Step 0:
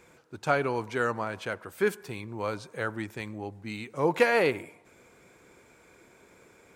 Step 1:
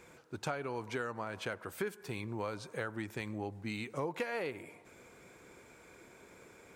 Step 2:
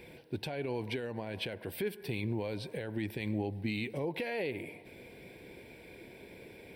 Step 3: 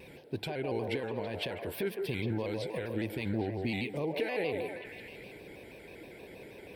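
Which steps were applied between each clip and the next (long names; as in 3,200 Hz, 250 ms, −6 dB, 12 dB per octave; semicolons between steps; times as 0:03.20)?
downward compressor 8 to 1, threshold −34 dBFS, peak gain reduction 17.5 dB
brickwall limiter −31.5 dBFS, peak gain reduction 10 dB; phaser with its sweep stopped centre 3,000 Hz, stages 4; level +8 dB
on a send: echo through a band-pass that steps 162 ms, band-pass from 530 Hz, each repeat 0.7 octaves, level −1 dB; on the sum: pitch modulation by a square or saw wave square 6.3 Hz, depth 100 cents; level +1 dB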